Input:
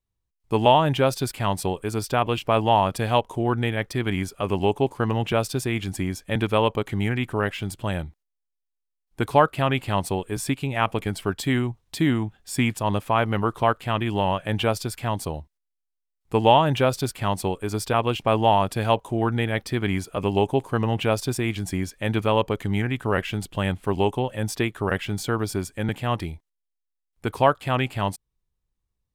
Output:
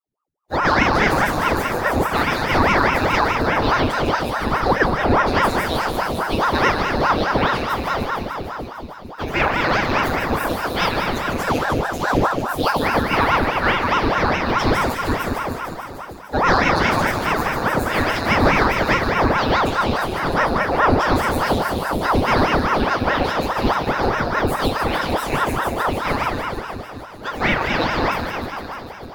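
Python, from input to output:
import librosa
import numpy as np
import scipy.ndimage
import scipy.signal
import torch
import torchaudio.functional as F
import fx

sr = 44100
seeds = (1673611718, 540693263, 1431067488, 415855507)

p1 = fx.pitch_bins(x, sr, semitones=7.5)
p2 = fx.ripple_eq(p1, sr, per_octave=1.5, db=9)
p3 = fx.leveller(p2, sr, passes=1)
p4 = p3 + fx.echo_wet_highpass(p3, sr, ms=150, feedback_pct=79, hz=4100.0, wet_db=-5.5, dry=0)
p5 = fx.room_shoebox(p4, sr, seeds[0], volume_m3=190.0, walls='hard', distance_m=0.66)
p6 = fx.ring_lfo(p5, sr, carrier_hz=660.0, swing_pct=90, hz=4.8)
y = p6 * librosa.db_to_amplitude(-1.0)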